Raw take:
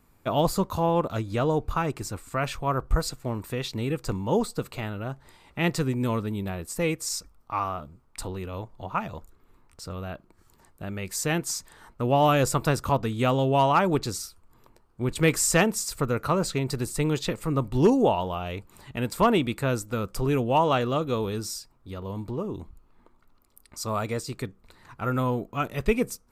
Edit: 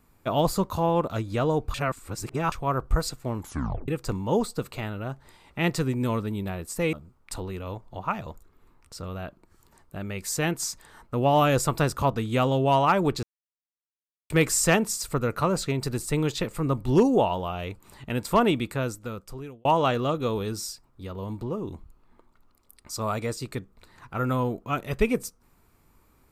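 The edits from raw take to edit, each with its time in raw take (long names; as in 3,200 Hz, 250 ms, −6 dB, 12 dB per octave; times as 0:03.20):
0:01.74–0:02.52: reverse
0:03.38: tape stop 0.50 s
0:06.93–0:07.80: remove
0:14.10–0:15.17: silence
0:19.42–0:20.52: fade out linear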